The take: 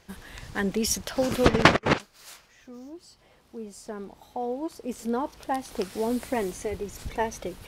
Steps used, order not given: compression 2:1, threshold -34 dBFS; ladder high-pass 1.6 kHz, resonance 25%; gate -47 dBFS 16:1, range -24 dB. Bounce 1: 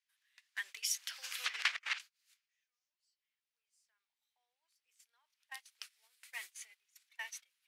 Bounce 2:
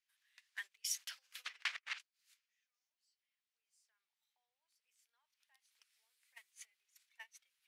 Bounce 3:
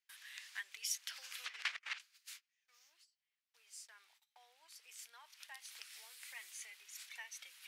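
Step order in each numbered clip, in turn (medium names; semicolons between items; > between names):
ladder high-pass > gate > compression; compression > ladder high-pass > gate; gate > compression > ladder high-pass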